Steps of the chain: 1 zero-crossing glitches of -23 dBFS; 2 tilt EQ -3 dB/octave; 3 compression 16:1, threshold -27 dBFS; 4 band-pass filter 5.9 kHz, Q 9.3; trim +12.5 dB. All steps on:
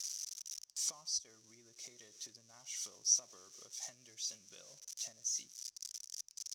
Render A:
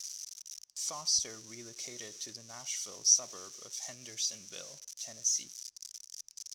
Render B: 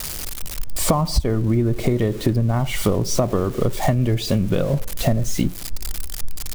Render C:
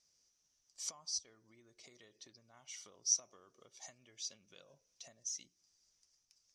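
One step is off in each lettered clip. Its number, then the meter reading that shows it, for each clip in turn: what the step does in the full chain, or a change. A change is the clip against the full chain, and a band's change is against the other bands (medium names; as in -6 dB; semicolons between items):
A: 3, mean gain reduction 7.5 dB; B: 4, 8 kHz band -25.5 dB; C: 1, distortion -8 dB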